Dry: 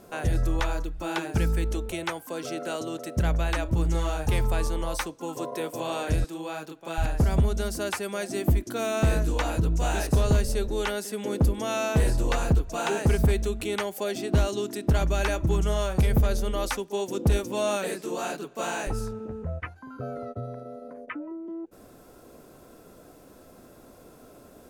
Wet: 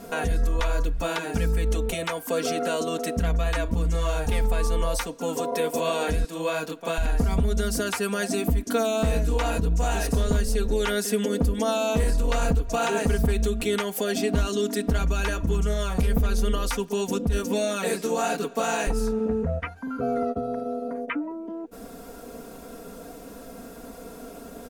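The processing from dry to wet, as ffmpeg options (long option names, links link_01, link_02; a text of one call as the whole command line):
ffmpeg -i in.wav -filter_complex "[0:a]asettb=1/sr,asplit=3[link_01][link_02][link_03];[link_01]atrim=end=16.524[link_04];[link_02]atrim=start=16.52:end=17.31,asetpts=PTS-STARTPTS,afade=type=in:duration=0.004:curve=qsin,afade=type=out:start_time=0.786:duration=0.004:curve=qsin,asubboost=boost=7.5:cutoff=220[link_05];[link_03]atrim=start=17.306[link_06];[link_04][link_05]acrossfade=duration=0.004:curve1=hsin:curve2=qsin[link_07];[link_07][link_06]acrossfade=duration=0.004:curve1=qsin:curve2=hsin,alimiter=level_in=1.5dB:limit=-24dB:level=0:latency=1:release=192,volume=-1.5dB,aecho=1:1:4.3:0.96,volume=6.5dB" out.wav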